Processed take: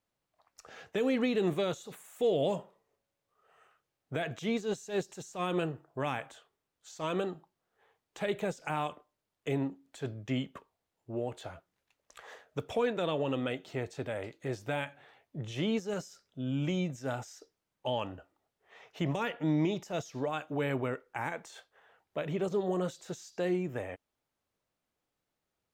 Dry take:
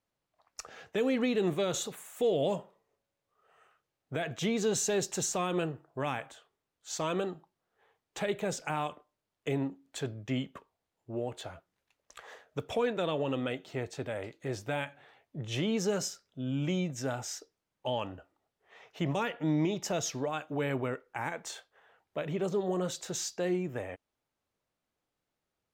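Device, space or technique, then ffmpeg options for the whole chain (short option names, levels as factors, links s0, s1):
de-esser from a sidechain: -filter_complex "[0:a]asplit=2[s0][s1];[s1]highpass=f=5400:w=0.5412,highpass=f=5400:w=1.3066,apad=whole_len=1134842[s2];[s0][s2]sidechaincompress=threshold=0.00316:ratio=5:attack=1.4:release=76"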